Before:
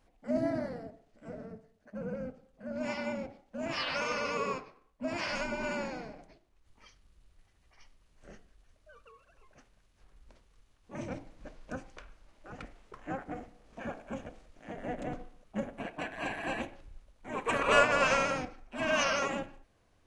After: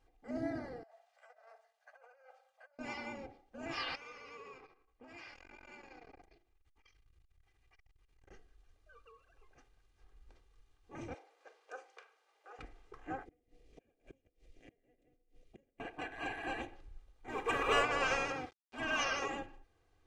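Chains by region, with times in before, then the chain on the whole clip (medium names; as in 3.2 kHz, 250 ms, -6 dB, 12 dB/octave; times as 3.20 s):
0.83–2.79 s: steep high-pass 570 Hz 72 dB/octave + compressor with a negative ratio -56 dBFS
3.95–8.31 s: peaking EQ 2.3 kHz +5 dB 0.61 oct + compression 12:1, threshold -42 dBFS + transformer saturation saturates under 900 Hz
11.14–12.59 s: Chebyshev high-pass 440 Hz, order 4 + doubling 42 ms -13 dB
13.25–15.80 s: inverted gate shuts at -35 dBFS, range -29 dB + high-order bell 1.1 kHz -14 dB 1.3 oct
17.28–17.82 s: companding laws mixed up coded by mu + band-stop 4.5 kHz, Q 19
18.32–18.78 s: high-pass 83 Hz + small samples zeroed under -45 dBFS + distance through air 72 m
whole clip: treble shelf 8.8 kHz -7.5 dB; comb 2.5 ms, depth 64%; trim -6 dB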